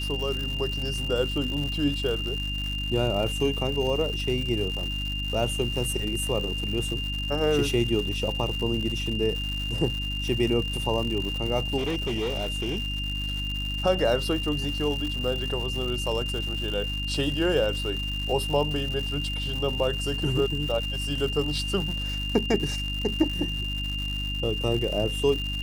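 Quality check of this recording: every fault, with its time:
crackle 230 per s -31 dBFS
hum 50 Hz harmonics 6 -32 dBFS
whine 2.8 kHz -31 dBFS
11.77–13.04 s: clipped -24 dBFS

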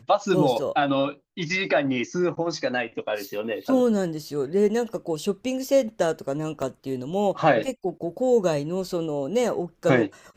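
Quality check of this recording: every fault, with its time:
6.62 s: dropout 3.7 ms

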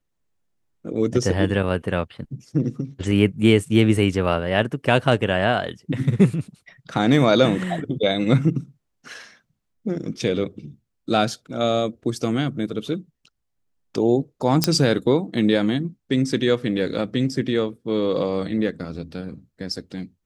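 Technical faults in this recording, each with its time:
14.64 s: pop -1 dBFS

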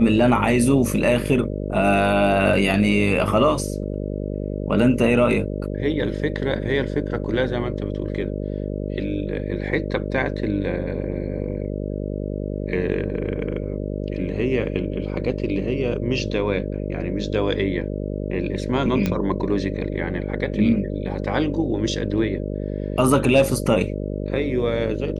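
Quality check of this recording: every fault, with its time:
buzz 50 Hz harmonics 12 -27 dBFS
19.06 s: pop -9 dBFS

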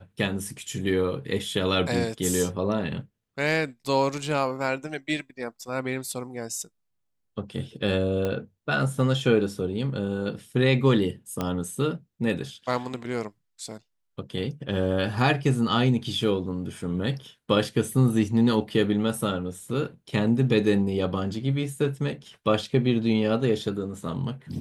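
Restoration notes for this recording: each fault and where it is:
8.25 s: pop -16 dBFS
11.41 s: pop -13 dBFS

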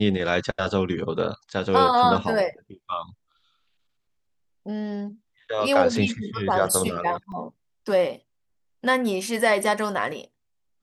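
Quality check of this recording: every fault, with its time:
7.32 s: dropout 2.5 ms

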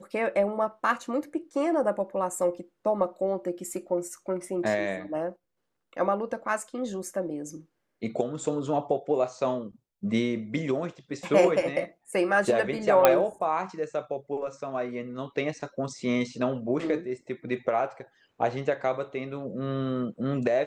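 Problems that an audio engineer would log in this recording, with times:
13.05 s: pop -4 dBFS

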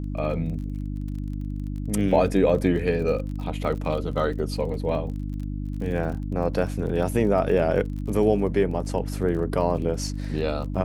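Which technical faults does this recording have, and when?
crackle 32 per s -34 dBFS
hum 50 Hz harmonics 6 -30 dBFS

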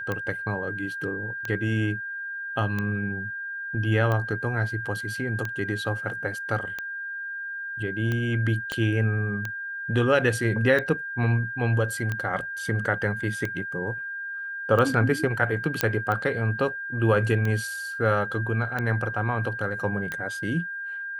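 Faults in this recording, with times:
tick 45 rpm -16 dBFS
whine 1.6 kHz -31 dBFS
8.72 s: pop -14 dBFS
15.81 s: pop -5 dBFS

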